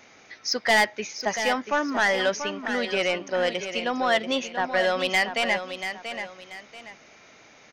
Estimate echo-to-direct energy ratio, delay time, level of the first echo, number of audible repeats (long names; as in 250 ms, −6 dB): −8.5 dB, 685 ms, −9.0 dB, 2